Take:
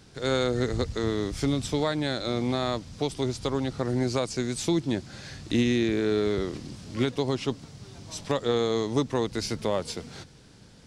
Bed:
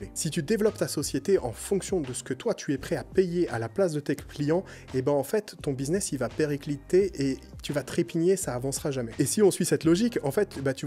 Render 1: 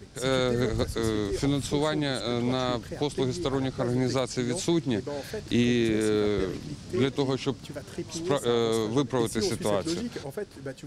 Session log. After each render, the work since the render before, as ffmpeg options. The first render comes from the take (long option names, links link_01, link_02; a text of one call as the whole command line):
ffmpeg -i in.wav -i bed.wav -filter_complex "[1:a]volume=-9.5dB[link_01];[0:a][link_01]amix=inputs=2:normalize=0" out.wav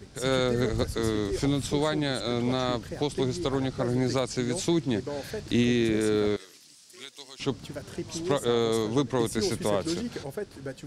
ffmpeg -i in.wav -filter_complex "[0:a]asettb=1/sr,asplit=3[link_01][link_02][link_03];[link_01]atrim=end=6.364[link_04];[link_02]atrim=start=6.36:end=7.4,asetpts=PTS-STARTPTS,afade=type=in:duration=0.004:curve=qsin,afade=type=out:start_time=1.036:duration=0.004:curve=qsin,aderivative[link_05];[link_03]atrim=start=7.396[link_06];[link_04][link_05]acrossfade=duration=0.004:curve1=hsin:curve2=qsin[link_07];[link_07][link_06]acrossfade=duration=0.004:curve1=qsin:curve2=hsin" out.wav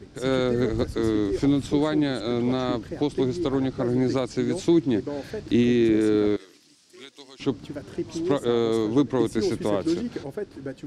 ffmpeg -i in.wav -af "lowpass=frequency=3800:poles=1,equalizer=frequency=310:width_type=o:width=0.62:gain=8" out.wav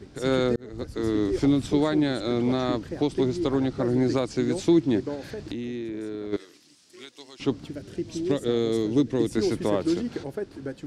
ffmpeg -i in.wav -filter_complex "[0:a]asplit=3[link_01][link_02][link_03];[link_01]afade=type=out:start_time=5.14:duration=0.02[link_04];[link_02]acompressor=threshold=-29dB:ratio=16:attack=3.2:release=140:knee=1:detection=peak,afade=type=in:start_time=5.14:duration=0.02,afade=type=out:start_time=6.32:duration=0.02[link_05];[link_03]afade=type=in:start_time=6.32:duration=0.02[link_06];[link_04][link_05][link_06]amix=inputs=3:normalize=0,asettb=1/sr,asplit=3[link_07][link_08][link_09];[link_07]atrim=end=7.694[link_10];[link_08]atrim=start=7.69:end=9.31,asetpts=PTS-STARTPTS,afade=type=in:duration=0.004:curve=qsin,afade=type=out:start_time=1.616:duration=0.004:curve=qsin,equalizer=frequency=990:width_type=o:width=1.2:gain=-10[link_11];[link_09]atrim=start=9.306[link_12];[link_10][link_11]acrossfade=duration=0.004:curve1=hsin:curve2=qsin[link_13];[link_13][link_12]acrossfade=duration=0.004:curve1=qsin:curve2=hsin,asplit=2[link_14][link_15];[link_14]atrim=end=0.56,asetpts=PTS-STARTPTS,afade=type=out:start_time=0.556:duration=0.004:curve=hsin[link_16];[link_15]atrim=start=0.56,asetpts=PTS-STARTPTS,afade=type=in:duration=0.68[link_17];[link_16][link_17]concat=n=2:v=0:a=1" out.wav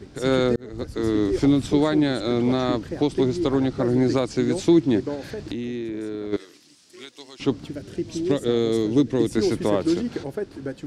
ffmpeg -i in.wav -af "volume=3dB" out.wav